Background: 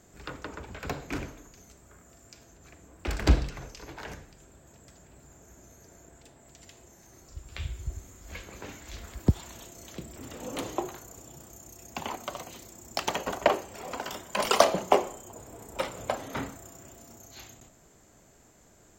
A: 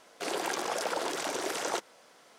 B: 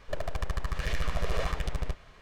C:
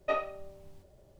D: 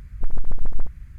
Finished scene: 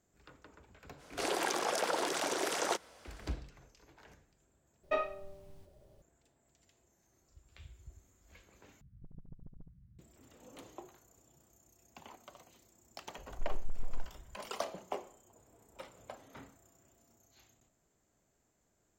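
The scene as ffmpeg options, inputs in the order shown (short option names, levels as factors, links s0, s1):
-filter_complex "[4:a]asplit=2[s0][s1];[0:a]volume=0.126[s2];[s0]bandpass=f=160:t=q:w=1.9:csg=0[s3];[s2]asplit=3[s4][s5][s6];[s4]atrim=end=4.834[s7];[3:a]atrim=end=1.19,asetpts=PTS-STARTPTS,volume=0.75[s8];[s5]atrim=start=6.016:end=8.814[s9];[s3]atrim=end=1.18,asetpts=PTS-STARTPTS,volume=0.355[s10];[s6]atrim=start=9.986[s11];[1:a]atrim=end=2.38,asetpts=PTS-STARTPTS,volume=0.891,afade=t=in:d=0.05,afade=t=out:st=2.33:d=0.05,adelay=970[s12];[s1]atrim=end=1.18,asetpts=PTS-STARTPTS,volume=0.178,afade=t=in:d=0.004:c=hsin,afade=t=out:st=1.176:d=0.004:c=hsin,adelay=13180[s13];[s7][s8]acrossfade=d=0.004:c1=hsin:c2=hsin[s14];[s14][s9]acrossfade=d=0.004:c1=hsin:c2=hsin[s15];[s15][s10]acrossfade=d=0.004:c1=hsin:c2=hsin[s16];[s16][s11]acrossfade=d=0.004:c1=hsin:c2=hsin[s17];[s17][s12][s13]amix=inputs=3:normalize=0"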